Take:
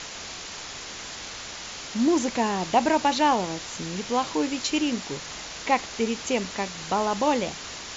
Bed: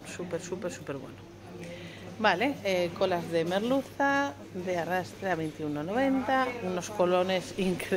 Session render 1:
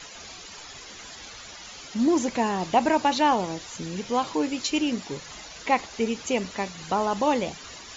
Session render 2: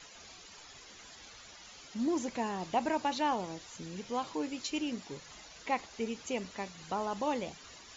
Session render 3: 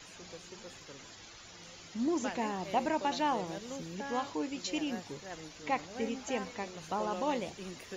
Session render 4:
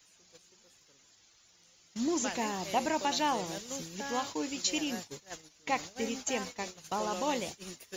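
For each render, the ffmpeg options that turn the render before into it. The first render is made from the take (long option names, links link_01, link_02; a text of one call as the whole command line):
ffmpeg -i in.wav -af "afftdn=noise_reduction=11:noise_floor=-38" out.wav
ffmpeg -i in.wav -af "volume=-10dB" out.wav
ffmpeg -i in.wav -i bed.wav -filter_complex "[1:a]volume=-16dB[link_01];[0:a][link_01]amix=inputs=2:normalize=0" out.wav
ffmpeg -i in.wav -af "aemphasis=mode=production:type=75kf,agate=range=-18dB:threshold=-40dB:ratio=16:detection=peak" out.wav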